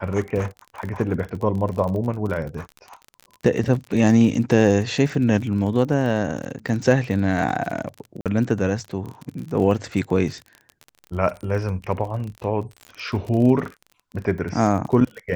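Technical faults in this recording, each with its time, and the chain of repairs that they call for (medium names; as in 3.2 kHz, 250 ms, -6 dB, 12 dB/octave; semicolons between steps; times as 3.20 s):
crackle 37 per s -29 dBFS
8.21–8.26 s: dropout 47 ms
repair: de-click; interpolate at 8.21 s, 47 ms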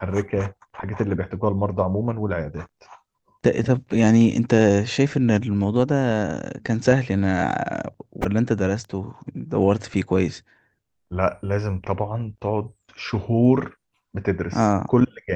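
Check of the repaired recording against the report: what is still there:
nothing left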